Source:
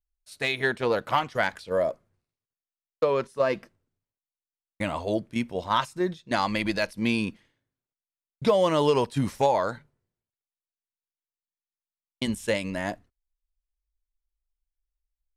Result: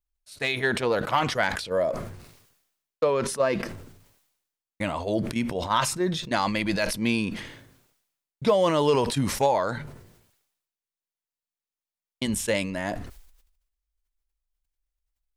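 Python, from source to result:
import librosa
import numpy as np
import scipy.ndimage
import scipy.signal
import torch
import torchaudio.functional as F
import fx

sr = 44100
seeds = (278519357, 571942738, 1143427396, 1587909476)

y = fx.sustainer(x, sr, db_per_s=63.0)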